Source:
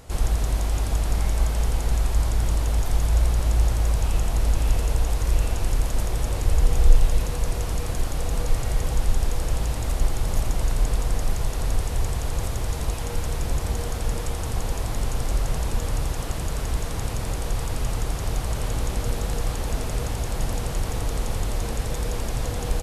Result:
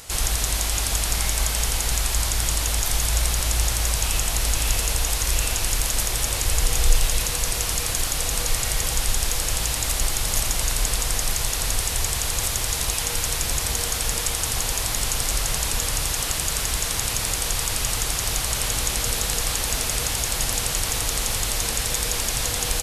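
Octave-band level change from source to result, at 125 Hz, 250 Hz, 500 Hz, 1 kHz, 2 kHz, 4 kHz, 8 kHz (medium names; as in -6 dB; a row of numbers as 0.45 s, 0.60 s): -4.0 dB, -3.0 dB, -1.0 dB, +3.0 dB, +9.0 dB, +13.0 dB, +14.5 dB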